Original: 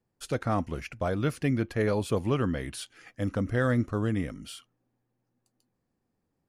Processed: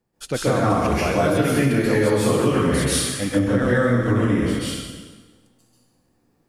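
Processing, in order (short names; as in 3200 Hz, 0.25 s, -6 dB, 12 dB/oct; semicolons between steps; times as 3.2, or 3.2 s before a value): bell 100 Hz -6.5 dB 0.45 oct; reverb RT60 1.4 s, pre-delay 0.123 s, DRR -9.5 dB; compressor, threshold -20 dBFS, peak gain reduction 8 dB; 0.7–3.39 high shelf 4600 Hz +7.5 dB; gain +5 dB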